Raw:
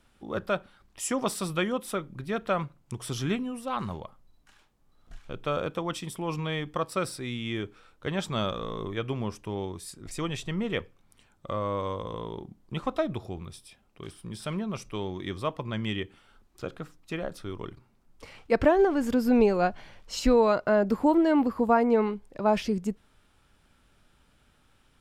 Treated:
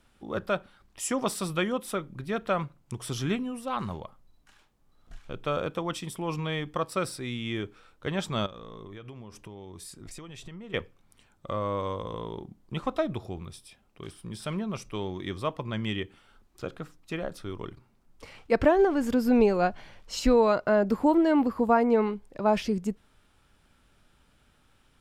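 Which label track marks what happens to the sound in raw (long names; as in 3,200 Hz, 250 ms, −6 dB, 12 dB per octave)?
8.460000	10.740000	downward compressor 12 to 1, threshold −39 dBFS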